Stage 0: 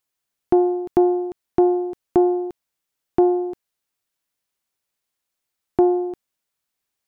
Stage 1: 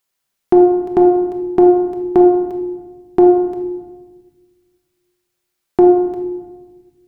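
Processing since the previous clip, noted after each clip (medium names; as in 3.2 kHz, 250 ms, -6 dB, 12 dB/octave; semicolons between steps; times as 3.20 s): bass shelf 240 Hz -3.5 dB; simulated room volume 880 m³, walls mixed, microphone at 1.2 m; trim +5 dB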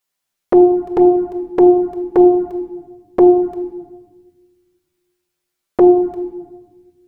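touch-sensitive flanger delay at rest 11.9 ms, full sweep at -7.5 dBFS; trim +1 dB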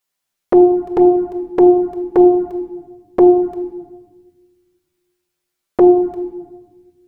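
no audible change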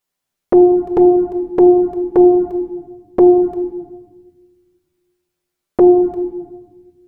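tilt shelf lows +3.5 dB, about 780 Hz; in parallel at -1 dB: peak limiter -9 dBFS, peak gain reduction 9.5 dB; on the sum: trim -4.5 dB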